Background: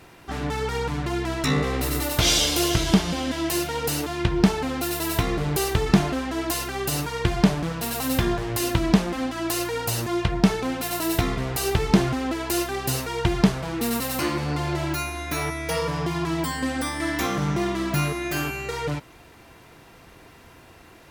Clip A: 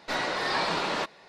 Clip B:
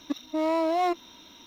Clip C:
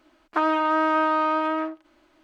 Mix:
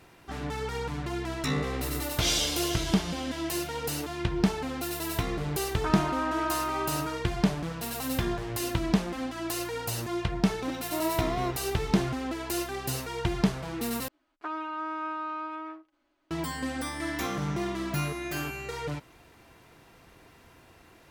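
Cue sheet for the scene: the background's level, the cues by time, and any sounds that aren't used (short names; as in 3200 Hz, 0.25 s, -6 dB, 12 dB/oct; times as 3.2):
background -6.5 dB
5.48 add C -8.5 dB + notch comb 200 Hz
10.58 add B -5 dB + comb 2.1 ms, depth 34%
14.08 replace with C -14 dB + comb 7.2 ms, depth 45%
not used: A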